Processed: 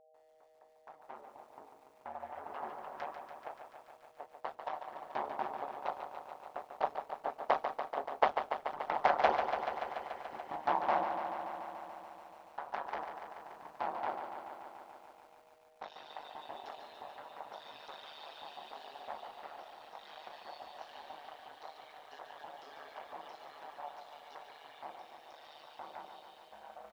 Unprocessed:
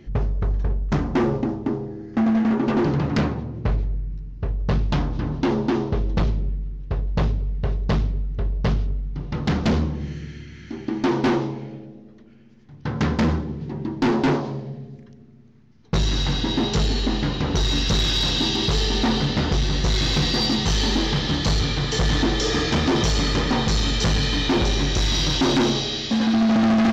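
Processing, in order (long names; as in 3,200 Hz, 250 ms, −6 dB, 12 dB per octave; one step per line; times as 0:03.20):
fade in at the beginning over 2.67 s
source passing by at 0:08.67, 18 m/s, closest 18 metres
spectral tilt +2.5 dB per octave
repeating echo 183 ms, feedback 52%, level −14.5 dB
on a send at −16 dB: convolution reverb, pre-delay 5 ms
on the sum: reverb reduction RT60 1.4 s
four-pole ladder band-pass 830 Hz, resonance 65%
steady tone 630 Hz −75 dBFS
amplitude modulation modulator 150 Hz, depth 90%
feedback echo at a low word length 144 ms, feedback 80%, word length 14 bits, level −7.5 dB
level +16 dB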